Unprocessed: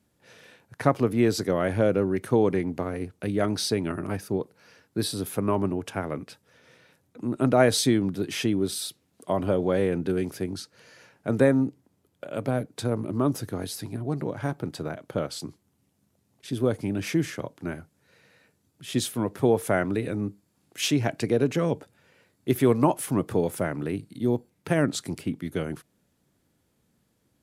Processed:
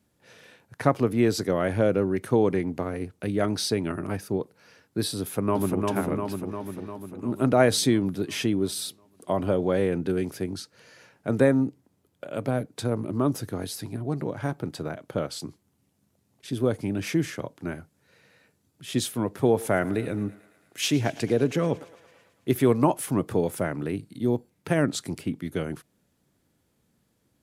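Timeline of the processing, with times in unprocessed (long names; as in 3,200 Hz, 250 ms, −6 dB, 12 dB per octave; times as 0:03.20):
0:05.20–0:05.86: delay throw 350 ms, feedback 65%, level −2.5 dB
0:19.34–0:22.55: feedback echo with a high-pass in the loop 111 ms, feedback 71%, level −18.5 dB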